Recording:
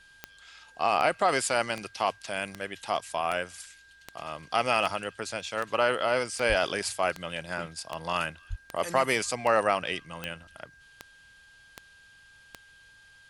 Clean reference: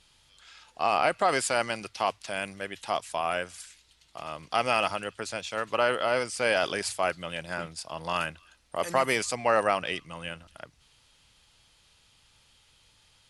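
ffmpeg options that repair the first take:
-filter_complex "[0:a]adeclick=t=4,bandreject=f=1.6k:w=30,asplit=3[a][b][c];[a]afade=t=out:st=6.48:d=0.02[d];[b]highpass=f=140:w=0.5412,highpass=f=140:w=1.3066,afade=t=in:st=6.48:d=0.02,afade=t=out:st=6.6:d=0.02[e];[c]afade=t=in:st=6.6:d=0.02[f];[d][e][f]amix=inputs=3:normalize=0,asplit=3[g][h][i];[g]afade=t=out:st=8.49:d=0.02[j];[h]highpass=f=140:w=0.5412,highpass=f=140:w=1.3066,afade=t=in:st=8.49:d=0.02,afade=t=out:st=8.61:d=0.02[k];[i]afade=t=in:st=8.61:d=0.02[l];[j][k][l]amix=inputs=3:normalize=0"

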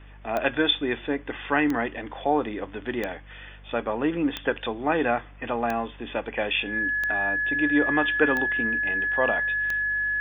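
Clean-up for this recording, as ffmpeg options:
-af "adeclick=t=4,bandreject=f=49.5:t=h:w=4,bandreject=f=99:t=h:w=4,bandreject=f=148.5:t=h:w=4,bandreject=f=198:t=h:w=4,bandreject=f=247.5:t=h:w=4,bandreject=f=1.7k:w=30"

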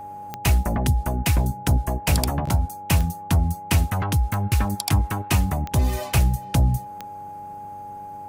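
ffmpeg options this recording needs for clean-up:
-af "adeclick=t=4,bandreject=f=98:t=h:w=4,bandreject=f=196:t=h:w=4,bandreject=f=294:t=h:w=4,bandreject=f=392:t=h:w=4,bandreject=f=490:t=h:w=4,bandreject=f=588:t=h:w=4,bandreject=f=830:w=30"

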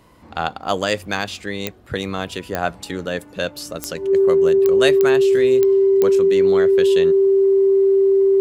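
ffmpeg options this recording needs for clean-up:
-af "adeclick=t=4,bandreject=f=390:w=30"

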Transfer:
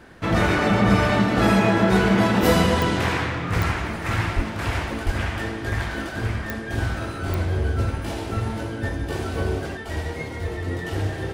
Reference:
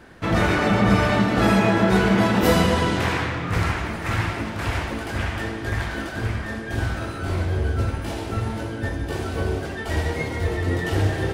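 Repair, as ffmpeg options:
-filter_complex "[0:a]adeclick=t=4,asplit=3[a][b][c];[a]afade=t=out:st=4.35:d=0.02[d];[b]highpass=f=140:w=0.5412,highpass=f=140:w=1.3066,afade=t=in:st=4.35:d=0.02,afade=t=out:st=4.47:d=0.02[e];[c]afade=t=in:st=4.47:d=0.02[f];[d][e][f]amix=inputs=3:normalize=0,asplit=3[g][h][i];[g]afade=t=out:st=5.05:d=0.02[j];[h]highpass=f=140:w=0.5412,highpass=f=140:w=1.3066,afade=t=in:st=5.05:d=0.02,afade=t=out:st=5.17:d=0.02[k];[i]afade=t=in:st=5.17:d=0.02[l];[j][k][l]amix=inputs=3:normalize=0,asetnsamples=n=441:p=0,asendcmd='9.77 volume volume 4.5dB',volume=0dB"

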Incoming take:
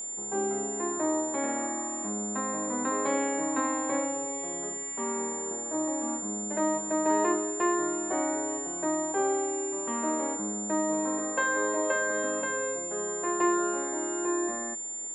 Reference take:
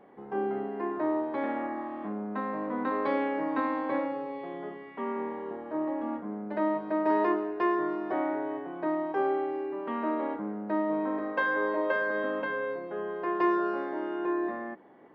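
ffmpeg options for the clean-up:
-af "bandreject=f=7.2k:w=30"

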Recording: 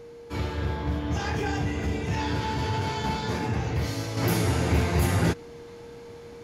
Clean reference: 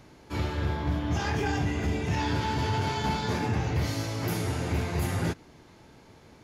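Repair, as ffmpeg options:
-af "bandreject=f=470:w=30,asetnsamples=n=441:p=0,asendcmd='4.17 volume volume -5.5dB',volume=0dB"

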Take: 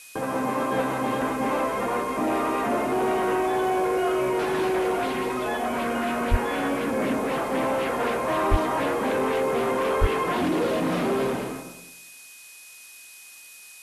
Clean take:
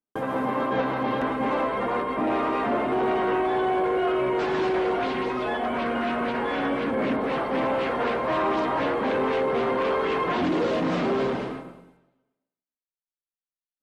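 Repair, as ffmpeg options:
-filter_complex "[0:a]bandreject=f=2.5k:w=30,asplit=3[a][b][c];[a]afade=t=out:st=6.3:d=0.02[d];[b]highpass=f=140:w=0.5412,highpass=f=140:w=1.3066,afade=t=in:st=6.3:d=0.02,afade=t=out:st=6.42:d=0.02[e];[c]afade=t=in:st=6.42:d=0.02[f];[d][e][f]amix=inputs=3:normalize=0,asplit=3[g][h][i];[g]afade=t=out:st=8.5:d=0.02[j];[h]highpass=f=140:w=0.5412,highpass=f=140:w=1.3066,afade=t=in:st=8.5:d=0.02,afade=t=out:st=8.62:d=0.02[k];[i]afade=t=in:st=8.62:d=0.02[l];[j][k][l]amix=inputs=3:normalize=0,asplit=3[m][n][o];[m]afade=t=out:st=10:d=0.02[p];[n]highpass=f=140:w=0.5412,highpass=f=140:w=1.3066,afade=t=in:st=10:d=0.02,afade=t=out:st=10.12:d=0.02[q];[o]afade=t=in:st=10.12:d=0.02[r];[p][q][r]amix=inputs=3:normalize=0,afftdn=nr=30:nf=-46"

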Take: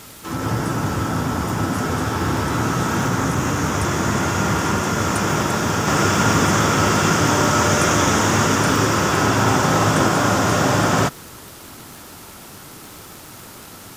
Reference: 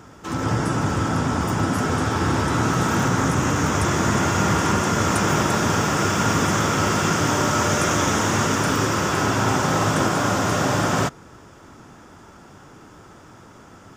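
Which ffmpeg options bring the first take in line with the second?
-af "adeclick=t=4,afwtdn=0.0089,asetnsamples=n=441:p=0,asendcmd='5.87 volume volume -3.5dB',volume=0dB"

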